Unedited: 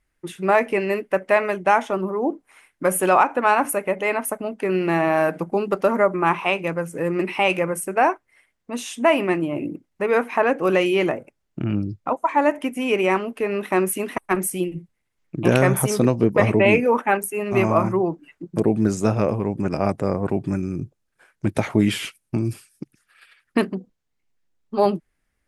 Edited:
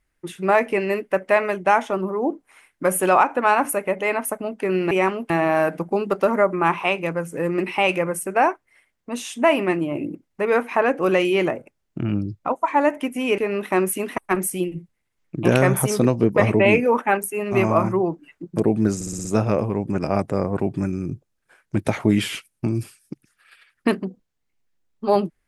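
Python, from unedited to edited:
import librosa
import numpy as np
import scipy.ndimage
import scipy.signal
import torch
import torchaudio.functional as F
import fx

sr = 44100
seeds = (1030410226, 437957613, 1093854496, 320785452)

y = fx.edit(x, sr, fx.move(start_s=12.99, length_s=0.39, to_s=4.91),
    fx.stutter(start_s=18.95, slice_s=0.06, count=6), tone=tone)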